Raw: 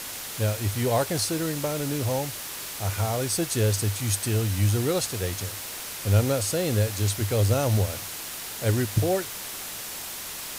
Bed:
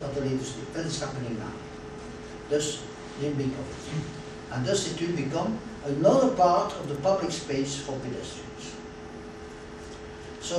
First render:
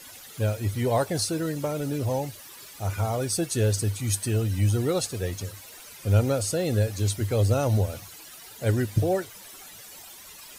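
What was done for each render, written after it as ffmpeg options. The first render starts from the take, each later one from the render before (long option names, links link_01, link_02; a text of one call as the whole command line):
ffmpeg -i in.wav -af "afftdn=noise_reduction=14:noise_floor=-36" out.wav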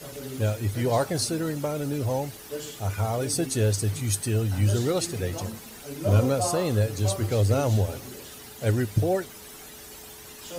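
ffmpeg -i in.wav -i bed.wav -filter_complex "[1:a]volume=-9dB[link_01];[0:a][link_01]amix=inputs=2:normalize=0" out.wav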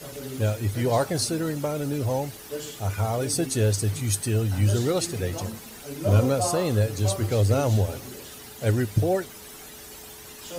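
ffmpeg -i in.wav -af "volume=1dB" out.wav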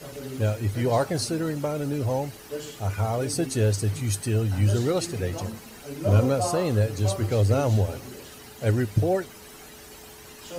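ffmpeg -i in.wav -af "highshelf=frequency=5800:gain=-6,bandreject=frequency=3500:width=19" out.wav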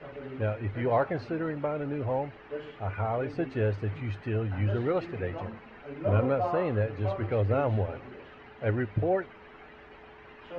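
ffmpeg -i in.wav -af "lowpass=frequency=2400:width=0.5412,lowpass=frequency=2400:width=1.3066,equalizer=frequency=120:width=0.33:gain=-7" out.wav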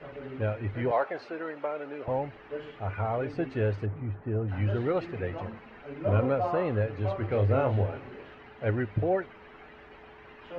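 ffmpeg -i in.wav -filter_complex "[0:a]asettb=1/sr,asplit=3[link_01][link_02][link_03];[link_01]atrim=end=0.914[link_04];[link_02]atrim=start=0.91:end=2.08,asetpts=PTS-STARTPTS,afade=type=in:duration=0.004:curve=qsin,afade=type=out:start_time=1.166:duration=0.004:curve=qsin,highpass=450[link_05];[link_03]atrim=start=2.076[link_06];[link_04][link_05]acrossfade=duration=0.004:curve1=hsin:curve2=qsin[link_07];[link_07][link_06]acrossfade=duration=0.004:curve1=qsin:curve2=hsin,asplit=3[link_08][link_09][link_10];[link_08]afade=type=out:start_time=3.85:duration=0.02[link_11];[link_09]lowpass=1100,afade=type=in:start_time=3.85:duration=0.02,afade=type=out:start_time=4.47:duration=0.02[link_12];[link_10]afade=type=in:start_time=4.47:duration=0.02[link_13];[link_11][link_12][link_13]amix=inputs=3:normalize=0,asettb=1/sr,asplit=3[link_14][link_15][link_16];[link_14]atrim=end=7.274[link_17];[link_15]atrim=start=7.27:end=8.35,asetpts=PTS-STARTPTS,afade=type=in:duration=0.004:curve=qsin,afade=type=out:start_time=1.076:duration=0.004:curve=qsin,asplit=2[link_18][link_19];[link_19]adelay=30,volume=-6.5dB[link_20];[link_18][link_20]amix=inputs=2:normalize=0,atrim=end_sample=47628[link_21];[link_16]atrim=start=8.346[link_22];[link_17][link_21]acrossfade=duration=0.004:curve1=hsin:curve2=qsin[link_23];[link_23][link_22]acrossfade=duration=0.004:curve1=qsin:curve2=hsin" out.wav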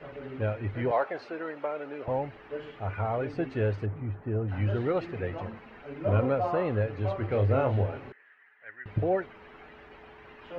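ffmpeg -i in.wav -filter_complex "[0:a]asettb=1/sr,asplit=3[link_01][link_02][link_03];[link_01]atrim=end=8.124[link_04];[link_02]atrim=start=8.12:end=8.86,asetpts=PTS-STARTPTS,afade=type=in:duration=0.004:curve=qsin,afade=type=out:start_time=0.736:duration=0.004:curve=qsin,bandpass=frequency=1800:width_type=q:width=6.7[link_05];[link_03]atrim=start=8.856[link_06];[link_04][link_05]acrossfade=duration=0.004:curve1=hsin:curve2=qsin[link_07];[link_07][link_06]acrossfade=duration=0.004:curve1=qsin:curve2=hsin" out.wav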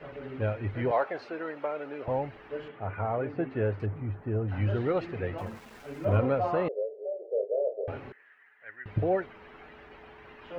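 ffmpeg -i in.wav -filter_complex "[0:a]asettb=1/sr,asplit=3[link_01][link_02][link_03];[link_01]atrim=end=2.684[link_04];[link_02]atrim=start=2.68:end=3.8,asetpts=PTS-STARTPTS,afade=type=in:duration=0.004:curve=qsin,afade=type=out:start_time=1.116:duration=0.004:curve=qsin,highpass=100,lowpass=2200[link_05];[link_03]atrim=start=3.796[link_06];[link_04][link_05]acrossfade=duration=0.004:curve1=hsin:curve2=qsin[link_07];[link_07][link_06]acrossfade=duration=0.004:curve1=qsin:curve2=hsin,asettb=1/sr,asplit=3[link_08][link_09][link_10];[link_08]atrim=end=5.384[link_11];[link_09]atrim=start=5.38:end=6.17,asetpts=PTS-STARTPTS,afade=type=in:duration=0.004:curve=qsin,afade=type=out:start_time=0.786:duration=0.004:curve=qsin,aeval=exprs='val(0)*gte(abs(val(0)),0.00316)':channel_layout=same[link_12];[link_10]atrim=start=6.166[link_13];[link_11][link_12]acrossfade=duration=0.004:curve1=hsin:curve2=qsin[link_14];[link_14][link_13]acrossfade=duration=0.004:curve1=qsin:curve2=hsin,asettb=1/sr,asplit=3[link_15][link_16][link_17];[link_15]atrim=end=6.684[link_18];[link_16]atrim=start=6.68:end=7.88,asetpts=PTS-STARTPTS,afade=type=in:duration=0.004:curve=qsin,afade=type=out:start_time=1.196:duration=0.004:curve=qsin,asuperpass=centerf=510:order=8:qfactor=2.1[link_19];[link_17]atrim=start=7.876[link_20];[link_18][link_19]acrossfade=duration=0.004:curve1=hsin:curve2=qsin[link_21];[link_21][link_20]acrossfade=duration=0.004:curve1=qsin:curve2=hsin" out.wav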